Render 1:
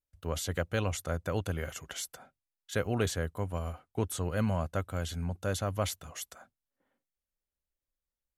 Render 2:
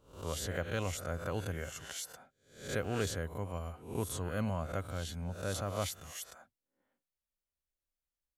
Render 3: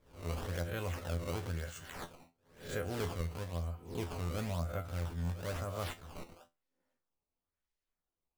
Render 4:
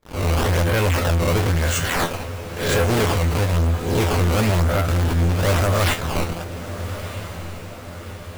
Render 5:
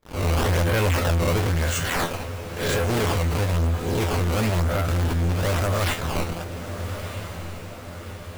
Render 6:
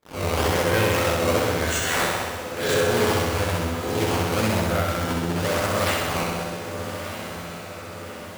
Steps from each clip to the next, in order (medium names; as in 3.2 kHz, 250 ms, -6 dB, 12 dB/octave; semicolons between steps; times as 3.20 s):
reverse spectral sustain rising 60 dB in 0.49 s; trim -5.5 dB
decimation with a swept rate 15×, swing 160% 1 Hz; bass shelf 65 Hz +6.5 dB; feedback comb 85 Hz, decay 0.2 s, harmonics all, mix 80%; trim +2.5 dB
peaking EQ 2.2 kHz +2 dB; waveshaping leveller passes 5; echo that smears into a reverb 1267 ms, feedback 56%, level -12 dB; trim +8.5 dB
peak limiter -15.5 dBFS, peak gain reduction 4 dB; trim -2 dB
high-pass 200 Hz 6 dB/octave; on a send: flutter echo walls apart 11 m, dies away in 1.3 s